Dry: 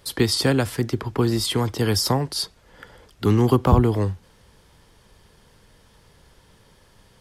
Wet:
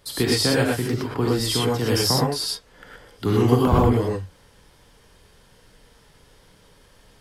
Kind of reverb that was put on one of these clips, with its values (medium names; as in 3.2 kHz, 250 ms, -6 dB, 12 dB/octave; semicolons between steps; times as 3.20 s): gated-style reverb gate 140 ms rising, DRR -3.5 dB; trim -3.5 dB